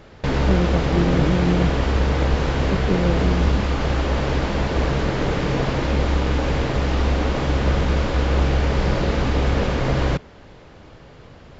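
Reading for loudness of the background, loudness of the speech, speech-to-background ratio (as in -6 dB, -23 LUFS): -21.5 LUFS, -24.5 LUFS, -3.0 dB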